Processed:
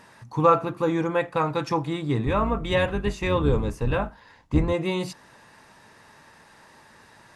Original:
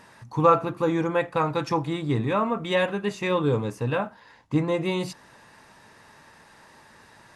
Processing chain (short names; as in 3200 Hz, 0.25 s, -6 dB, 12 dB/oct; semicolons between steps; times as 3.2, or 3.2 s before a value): 2.26–4.73 octaver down 2 oct, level +1 dB